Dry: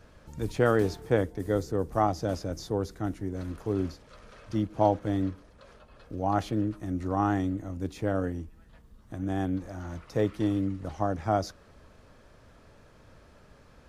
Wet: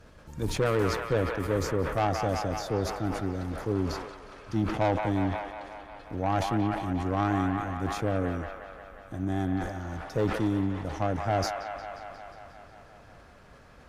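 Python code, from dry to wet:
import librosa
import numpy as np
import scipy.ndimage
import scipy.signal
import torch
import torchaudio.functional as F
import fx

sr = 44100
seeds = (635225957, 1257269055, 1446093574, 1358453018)

p1 = fx.tube_stage(x, sr, drive_db=23.0, bias=0.5)
p2 = p1 + fx.echo_wet_bandpass(p1, sr, ms=179, feedback_pct=73, hz=1500.0, wet_db=-3.0, dry=0)
p3 = fx.sustainer(p2, sr, db_per_s=57.0)
y = F.gain(torch.from_numpy(p3), 3.0).numpy()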